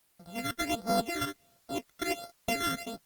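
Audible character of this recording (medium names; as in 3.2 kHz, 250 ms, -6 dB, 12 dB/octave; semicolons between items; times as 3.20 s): a buzz of ramps at a fixed pitch in blocks of 64 samples; phasing stages 12, 1.4 Hz, lowest notch 770–2800 Hz; a quantiser's noise floor 12-bit, dither triangular; Opus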